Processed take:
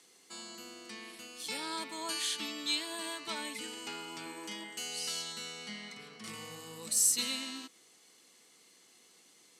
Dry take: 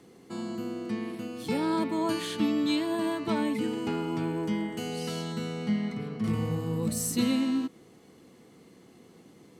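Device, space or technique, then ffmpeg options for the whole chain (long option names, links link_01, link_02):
piezo pickup straight into a mixer: -filter_complex "[0:a]asettb=1/sr,asplit=3[link_01][link_02][link_03];[link_01]atrim=end=4.224[link_04];[link_02]atrim=start=4.22:end=4.64,asetpts=PTS-STARTPTS,afade=type=in:duration=0.004:curve=qsin,afade=type=out:start_time=0.416:duration=0.004:curve=qsin,asplit=2[link_05][link_06];[link_06]adelay=40,volume=-4.5dB[link_07];[link_05][link_07]amix=inputs=2:normalize=0,atrim=end_sample=18522[link_08];[link_03]atrim=start=4.636[link_09];[link_04][link_08]acrossfade=duration=0.004:curve1=hsin:curve2=qsin[link_10];[link_10][link_09]acrossfade=duration=0.004:curve1=qsin:curve2=hsin,lowpass=8200,aderivative,volume=9dB"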